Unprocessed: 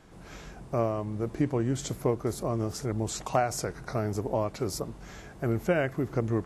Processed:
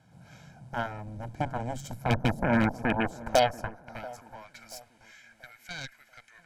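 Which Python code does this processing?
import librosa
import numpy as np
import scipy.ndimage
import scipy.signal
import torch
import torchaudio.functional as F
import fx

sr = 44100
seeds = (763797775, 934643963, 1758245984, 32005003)

p1 = fx.graphic_eq_10(x, sr, hz=(125, 250, 500, 1000, 2000, 4000, 8000), db=(6, 12, 7, -6, -6, -8, -10), at=(2.09, 3.93), fade=0.02)
p2 = fx.filter_sweep_highpass(p1, sr, from_hz=120.0, to_hz=2000.0, start_s=2.04, end_s=4.67, q=2.5)
p3 = fx.cheby_harmonics(p2, sr, harmonics=(5, 7, 8), levels_db=(-19, -9, -16), full_scale_db=-7.5)
p4 = p3 + 0.74 * np.pad(p3, (int(1.3 * sr / 1000.0), 0))[:len(p3)]
p5 = p4 + fx.echo_wet_lowpass(p4, sr, ms=684, feedback_pct=35, hz=1400.0, wet_db=-19, dry=0)
y = p5 * 10.0 ** (-9.0 / 20.0)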